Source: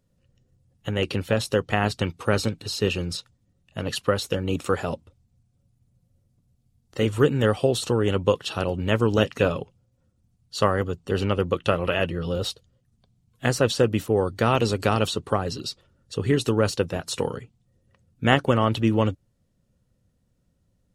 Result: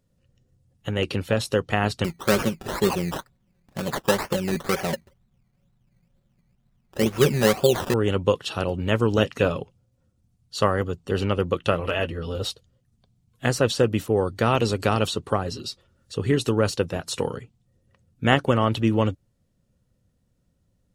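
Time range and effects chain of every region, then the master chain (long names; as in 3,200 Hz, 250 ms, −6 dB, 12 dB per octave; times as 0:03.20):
0:02.04–0:07.94: comb filter 5.3 ms, depth 69% + sample-and-hold swept by an LFO 16×, swing 60% 2.1 Hz
0:11.80–0:12.45: notch comb filter 180 Hz + hard clipping −12.5 dBFS
0:15.43–0:16.14: notch comb filter 150 Hz + one half of a high-frequency compander encoder only
whole clip: no processing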